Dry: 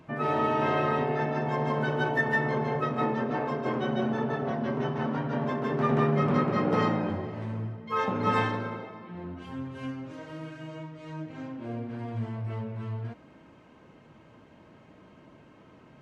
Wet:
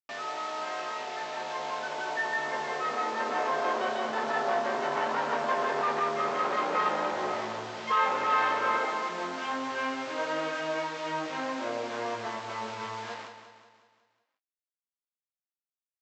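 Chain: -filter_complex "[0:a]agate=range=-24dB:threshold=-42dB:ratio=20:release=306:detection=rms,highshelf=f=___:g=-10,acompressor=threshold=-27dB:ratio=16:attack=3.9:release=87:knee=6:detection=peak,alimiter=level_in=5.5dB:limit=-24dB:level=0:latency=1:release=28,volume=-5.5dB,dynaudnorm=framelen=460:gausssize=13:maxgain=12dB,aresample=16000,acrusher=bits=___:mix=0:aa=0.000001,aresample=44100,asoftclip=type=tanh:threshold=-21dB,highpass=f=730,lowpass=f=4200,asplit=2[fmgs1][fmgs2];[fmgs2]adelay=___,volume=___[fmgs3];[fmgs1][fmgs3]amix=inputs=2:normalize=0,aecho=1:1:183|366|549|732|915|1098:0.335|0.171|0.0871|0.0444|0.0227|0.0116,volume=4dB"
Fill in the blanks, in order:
3100, 6, 19, -6.5dB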